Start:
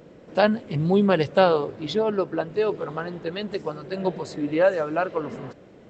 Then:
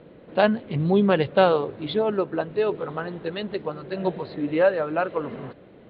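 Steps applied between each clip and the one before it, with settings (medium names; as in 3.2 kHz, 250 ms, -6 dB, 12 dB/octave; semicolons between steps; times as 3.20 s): steep low-pass 4.2 kHz 72 dB/octave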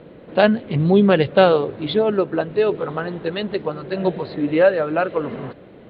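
dynamic bell 970 Hz, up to -5 dB, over -34 dBFS, Q 2.1; trim +5.5 dB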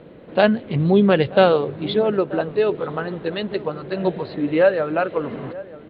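echo from a far wall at 160 m, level -18 dB; trim -1 dB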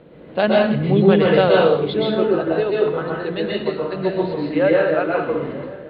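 plate-style reverb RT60 0.59 s, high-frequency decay 0.95×, pre-delay 110 ms, DRR -3.5 dB; trim -3 dB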